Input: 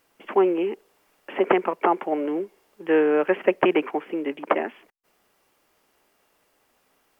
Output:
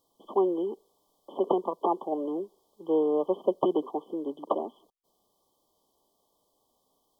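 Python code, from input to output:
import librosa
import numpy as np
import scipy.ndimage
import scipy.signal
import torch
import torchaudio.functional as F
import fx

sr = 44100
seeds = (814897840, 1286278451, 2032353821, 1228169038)

y = fx.brickwall_bandstop(x, sr, low_hz=1200.0, high_hz=3000.0)
y = y * 10.0 ** (-5.5 / 20.0)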